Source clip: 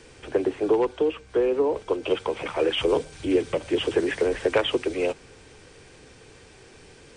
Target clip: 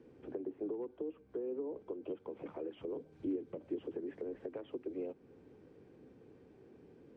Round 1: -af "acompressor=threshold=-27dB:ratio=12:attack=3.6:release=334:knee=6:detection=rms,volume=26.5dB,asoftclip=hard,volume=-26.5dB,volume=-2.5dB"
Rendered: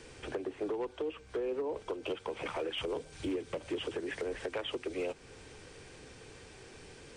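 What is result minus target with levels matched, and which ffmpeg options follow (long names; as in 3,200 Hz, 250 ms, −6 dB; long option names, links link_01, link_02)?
250 Hz band −3.5 dB
-af "acompressor=threshold=-27dB:ratio=12:attack=3.6:release=334:knee=6:detection=rms,bandpass=frequency=260:width_type=q:width=1.5:csg=0,volume=26.5dB,asoftclip=hard,volume=-26.5dB,volume=-2.5dB"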